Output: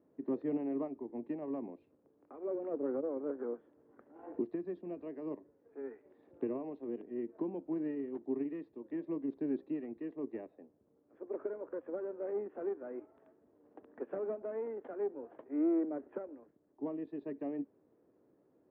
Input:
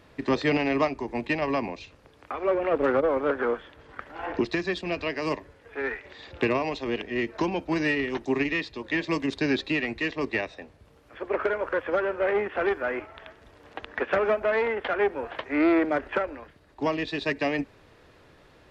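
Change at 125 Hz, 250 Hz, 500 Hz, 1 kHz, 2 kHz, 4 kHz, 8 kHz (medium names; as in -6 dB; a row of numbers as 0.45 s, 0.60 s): -18.0 dB, -8.5 dB, -12.5 dB, -21.5 dB, -32.0 dB, under -40 dB, no reading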